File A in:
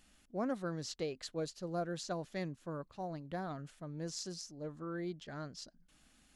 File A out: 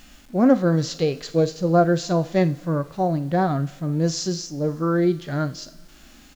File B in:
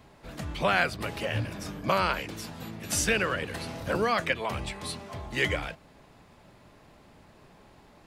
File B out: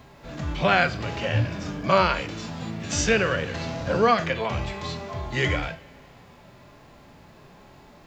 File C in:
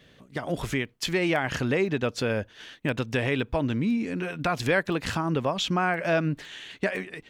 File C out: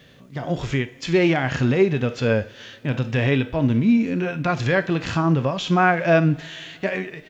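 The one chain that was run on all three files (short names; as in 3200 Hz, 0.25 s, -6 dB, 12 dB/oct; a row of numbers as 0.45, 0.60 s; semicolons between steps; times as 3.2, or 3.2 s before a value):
two-slope reverb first 0.35 s, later 3 s, from -20 dB, DRR 14 dB; downsampling 16000 Hz; requantised 12-bit, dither none; harmonic-percussive split percussive -12 dB; normalise peaks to -6 dBFS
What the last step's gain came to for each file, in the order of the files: +21.0, +9.0, +8.5 dB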